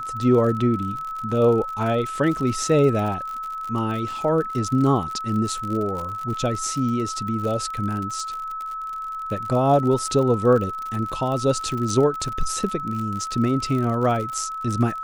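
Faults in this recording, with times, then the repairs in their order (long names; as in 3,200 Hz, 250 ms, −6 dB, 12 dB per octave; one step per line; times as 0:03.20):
surface crackle 55 per second −28 dBFS
whistle 1,300 Hz −28 dBFS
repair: click removal
notch filter 1,300 Hz, Q 30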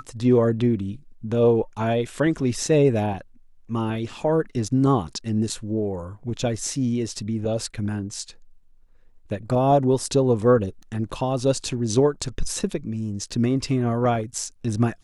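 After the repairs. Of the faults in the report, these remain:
none of them is left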